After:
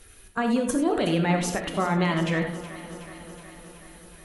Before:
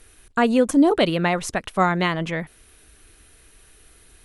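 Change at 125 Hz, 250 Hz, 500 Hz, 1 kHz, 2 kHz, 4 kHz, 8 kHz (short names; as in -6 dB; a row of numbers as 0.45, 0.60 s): +0.5, -4.0, -5.0, -5.0, -4.5, -4.5, -0.5 dB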